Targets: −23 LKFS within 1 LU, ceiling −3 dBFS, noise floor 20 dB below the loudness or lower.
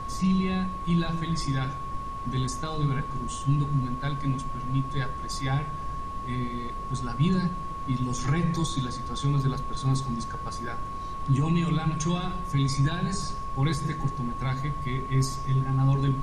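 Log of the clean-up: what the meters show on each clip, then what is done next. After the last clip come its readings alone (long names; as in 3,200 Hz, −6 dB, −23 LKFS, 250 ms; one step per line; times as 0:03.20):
interfering tone 1,100 Hz; level of the tone −34 dBFS; background noise floor −35 dBFS; target noise floor −49 dBFS; integrated loudness −28.5 LKFS; sample peak −13.5 dBFS; target loudness −23.0 LKFS
→ notch filter 1,100 Hz, Q 30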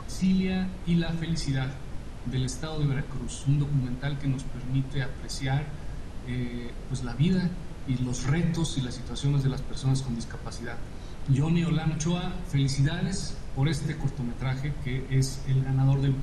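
interfering tone none found; background noise floor −39 dBFS; target noise floor −49 dBFS
→ noise reduction from a noise print 10 dB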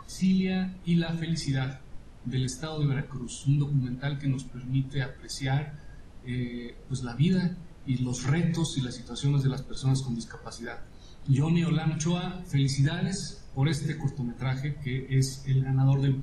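background noise floor −47 dBFS; target noise floor −49 dBFS
→ noise reduction from a noise print 6 dB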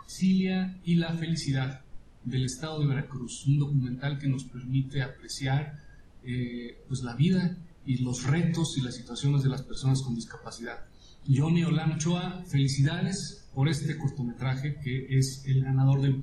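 background noise floor −52 dBFS; integrated loudness −29.0 LKFS; sample peak −14.0 dBFS; target loudness −23.0 LKFS
→ level +6 dB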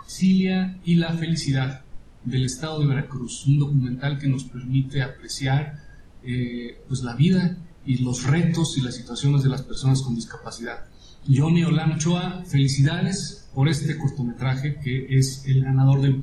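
integrated loudness −23.0 LKFS; sample peak −8.0 dBFS; background noise floor −46 dBFS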